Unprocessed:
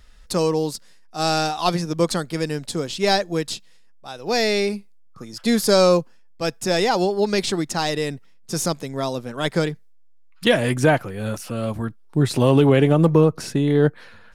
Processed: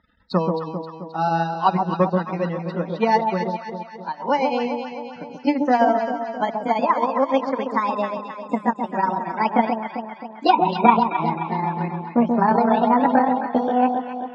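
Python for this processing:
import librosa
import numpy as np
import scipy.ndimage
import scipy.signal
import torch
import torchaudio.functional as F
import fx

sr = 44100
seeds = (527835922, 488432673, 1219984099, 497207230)

p1 = fx.pitch_glide(x, sr, semitones=9.5, runs='starting unshifted')
p2 = fx.peak_eq(p1, sr, hz=170.0, db=8.0, octaves=0.26)
p3 = fx.hum_notches(p2, sr, base_hz=50, count=4)
p4 = fx.rider(p3, sr, range_db=10, speed_s=2.0)
p5 = p3 + (p4 * librosa.db_to_amplitude(-2.5))
p6 = fx.transient(p5, sr, attack_db=8, sustain_db=-11)
p7 = fx.tube_stage(p6, sr, drive_db=-2.0, bias=0.45)
p8 = fx.spec_topn(p7, sr, count=64)
p9 = fx.cabinet(p8, sr, low_hz=130.0, low_slope=12, high_hz=3400.0, hz=(140.0, 230.0, 420.0, 950.0, 2800.0), db=(-9, 3, -5, 9, -5))
p10 = p9 + fx.echo_alternate(p9, sr, ms=132, hz=1000.0, feedback_pct=72, wet_db=-4.0, dry=0)
p11 = fx.end_taper(p10, sr, db_per_s=530.0)
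y = p11 * librosa.db_to_amplitude(-6.5)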